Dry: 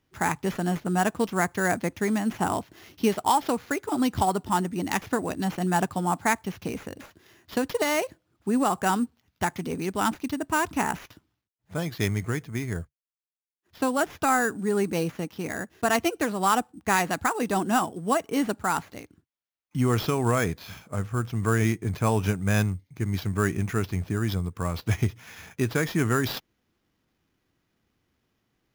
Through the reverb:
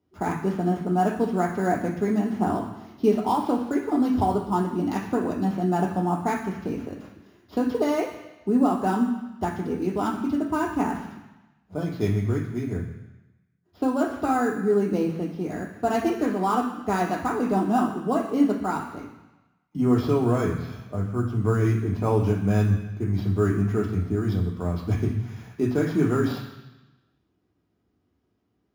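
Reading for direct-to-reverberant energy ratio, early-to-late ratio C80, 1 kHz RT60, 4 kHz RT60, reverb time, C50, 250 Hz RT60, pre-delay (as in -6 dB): 0.5 dB, 10.0 dB, 1.1 s, 1.2 s, 1.1 s, 7.5 dB, 1.1 s, 3 ms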